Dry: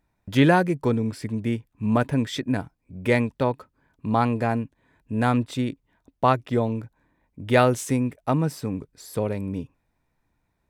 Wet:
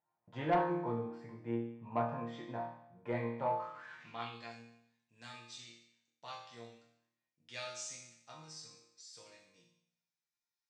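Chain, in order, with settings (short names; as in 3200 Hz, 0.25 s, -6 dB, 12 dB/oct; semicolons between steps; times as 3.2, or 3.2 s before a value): 3.37–4.1 zero-crossing step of -36 dBFS; steep low-pass 8200 Hz; bell 130 Hz +13 dB 0.47 oct; resonator bank A#2 sus4, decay 0.75 s; band-pass sweep 840 Hz -> 5500 Hz, 3.52–4.58; soft clip -38.5 dBFS, distortion -14 dB; on a send: reverb RT60 0.20 s, pre-delay 4 ms, DRR 17 dB; on the sum: gain +15.5 dB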